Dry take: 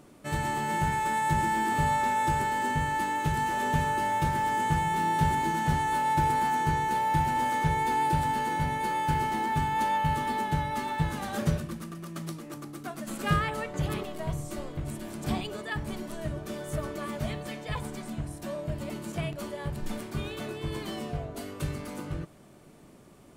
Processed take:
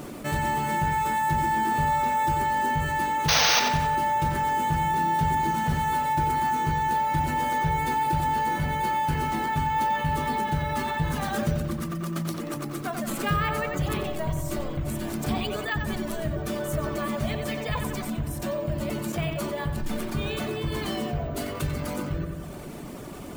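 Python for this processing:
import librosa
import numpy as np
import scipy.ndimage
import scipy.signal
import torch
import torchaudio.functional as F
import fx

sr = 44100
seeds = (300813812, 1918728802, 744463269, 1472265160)

p1 = fx.dereverb_blind(x, sr, rt60_s=0.65)
p2 = fx.spec_paint(p1, sr, seeds[0], shape='noise', start_s=3.28, length_s=0.32, low_hz=440.0, high_hz=6500.0, level_db=-19.0)
p3 = p2 + fx.echo_filtered(p2, sr, ms=90, feedback_pct=52, hz=4900.0, wet_db=-8, dry=0)
p4 = np.repeat(p3[::2], 2)[:len(p3)]
p5 = fx.env_flatten(p4, sr, amount_pct=50)
y = p5 * 10.0 ** (-2.5 / 20.0)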